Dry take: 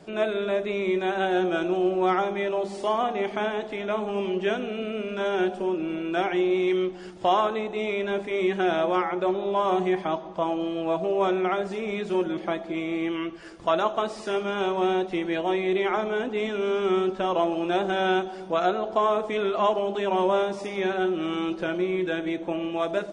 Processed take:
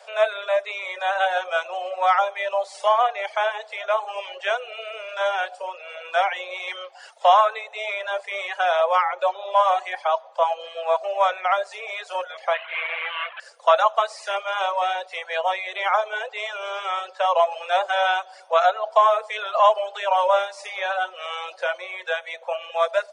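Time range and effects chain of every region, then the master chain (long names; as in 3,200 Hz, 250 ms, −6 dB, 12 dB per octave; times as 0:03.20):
0:12.54–0:13.40: linear delta modulator 16 kbit/s, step −33.5 dBFS + tilt shelving filter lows −8.5 dB, about 670 Hz
whole clip: Butterworth high-pass 510 Hz 72 dB per octave; reverb reduction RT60 0.89 s; dynamic equaliser 1,100 Hz, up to +3 dB, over −35 dBFS, Q 1.5; level +6 dB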